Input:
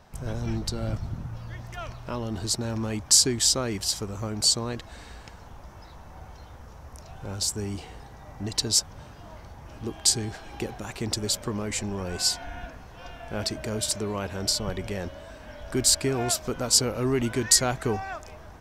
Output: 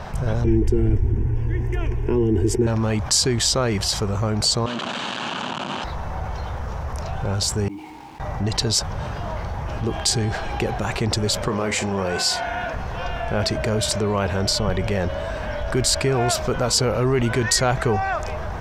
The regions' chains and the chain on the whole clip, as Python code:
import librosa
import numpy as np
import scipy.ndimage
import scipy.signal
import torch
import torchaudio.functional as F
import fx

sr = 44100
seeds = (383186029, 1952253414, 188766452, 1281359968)

y = fx.chain(x, sr, fx.low_shelf_res(hz=530.0, db=9.5, q=3.0),
    fx.fixed_phaser(hz=840.0, stages=8), at=(0.44, 2.67))
y = fx.chain(y, sr, fx.clip_1bit(),
    fx.cabinet(low_hz=180.0, low_slope=24, high_hz=7000.0, hz=(250.0, 460.0, 700.0, 2000.0, 3000.0, 5300.0), db=(7, -8, -3, -9, 8, -7)), at=(4.66, 5.84))
y = fx.chain(y, sr, fx.vowel_filter(vowel='u'),
    fx.comb_fb(f0_hz=310.0, decay_s=0.72, harmonics='all', damping=0.0, mix_pct=70),
    fx.quant_dither(seeds[0], bits=12, dither='none'), at=(7.68, 8.2))
y = fx.chain(y, sr, fx.highpass(hz=250.0, slope=6),
    fx.doubler(ms=41.0, db=-11.0), at=(11.48, 12.74))
y = fx.lowpass(y, sr, hz=2500.0, slope=6)
y = fx.peak_eq(y, sr, hz=280.0, db=-8.0, octaves=0.6)
y = fx.env_flatten(y, sr, amount_pct=50)
y = F.gain(torch.from_numpy(y), 4.5).numpy()